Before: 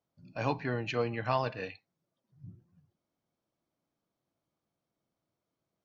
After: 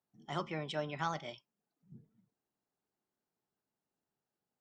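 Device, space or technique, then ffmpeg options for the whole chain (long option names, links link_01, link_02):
nightcore: -af "asetrate=56007,aresample=44100,volume=-6dB"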